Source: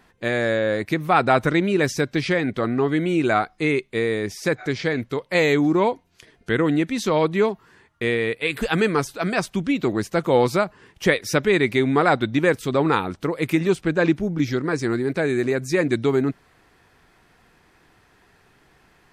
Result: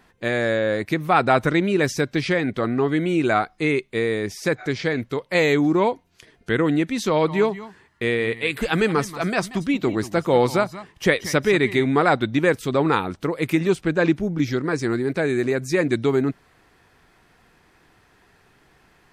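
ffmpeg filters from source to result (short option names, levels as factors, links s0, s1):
-filter_complex "[0:a]asettb=1/sr,asplit=3[s0][s1][s2];[s0]atrim=end=7.094[s3];[s1]atrim=start=7.09:end=11.86,asetpts=PTS-STARTPTS,afade=t=in:d=0.004:c=qsin,afade=t=out:st=4.766:d=0.004:c=qsin,aecho=1:1:183|184:0.168|0.119,atrim=end_sample=210357[s4];[s2]atrim=start=11.856[s5];[s3][s4]acrossfade=d=0.004:c1=hsin:c2=qsin[s6];[s6][s5]acrossfade=d=0.004:c1=qsin:c2=hsin"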